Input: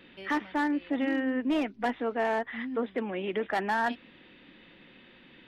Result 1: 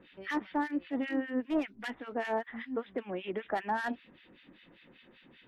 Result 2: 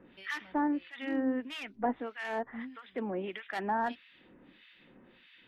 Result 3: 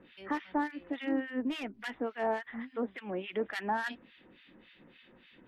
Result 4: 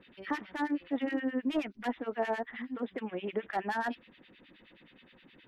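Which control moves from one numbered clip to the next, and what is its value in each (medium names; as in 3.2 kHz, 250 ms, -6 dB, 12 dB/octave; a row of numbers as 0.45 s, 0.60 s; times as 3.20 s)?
harmonic tremolo, rate: 5.1 Hz, 1.6 Hz, 3.5 Hz, 9.5 Hz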